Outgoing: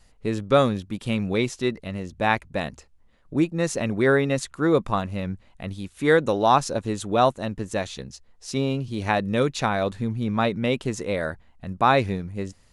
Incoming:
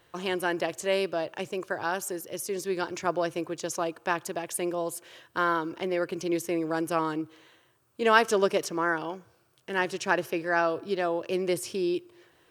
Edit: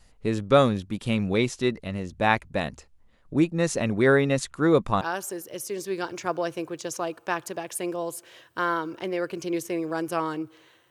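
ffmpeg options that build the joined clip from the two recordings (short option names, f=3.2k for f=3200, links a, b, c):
-filter_complex "[0:a]apad=whole_dur=10.9,atrim=end=10.9,atrim=end=5.012[a];[1:a]atrim=start=1.798:end=7.69[b];[a][b]acrossfade=d=0.004:c1=hsin:c2=hsin"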